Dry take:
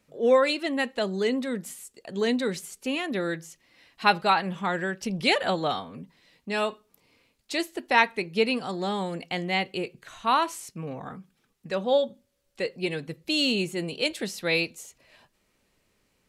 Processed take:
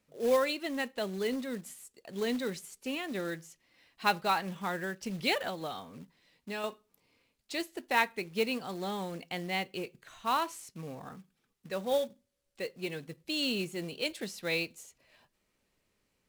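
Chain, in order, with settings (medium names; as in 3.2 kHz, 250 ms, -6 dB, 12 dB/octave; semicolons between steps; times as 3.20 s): 5.47–6.64 s: compression, threshold -27 dBFS, peak gain reduction 6 dB; 12.06–13.43 s: Chebyshev low-pass 12 kHz, order 2; short-mantissa float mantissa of 2-bit; trim -7 dB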